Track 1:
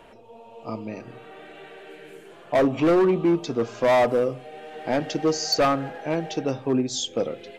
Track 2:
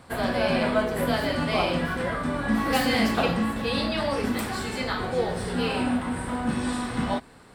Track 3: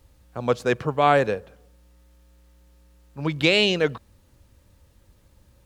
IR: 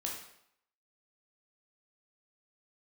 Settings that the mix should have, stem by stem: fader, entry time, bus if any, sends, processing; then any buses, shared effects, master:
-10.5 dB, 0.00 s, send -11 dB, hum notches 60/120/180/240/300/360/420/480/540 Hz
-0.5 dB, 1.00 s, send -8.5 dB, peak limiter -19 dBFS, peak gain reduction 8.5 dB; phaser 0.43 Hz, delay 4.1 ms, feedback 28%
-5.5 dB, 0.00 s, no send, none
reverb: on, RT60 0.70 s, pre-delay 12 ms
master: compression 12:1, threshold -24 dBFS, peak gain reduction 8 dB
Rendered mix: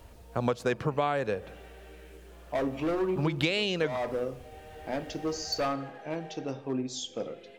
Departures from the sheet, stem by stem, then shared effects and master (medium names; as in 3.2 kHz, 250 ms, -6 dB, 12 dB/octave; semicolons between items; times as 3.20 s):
stem 2: muted; stem 3 -5.5 dB -> +3.5 dB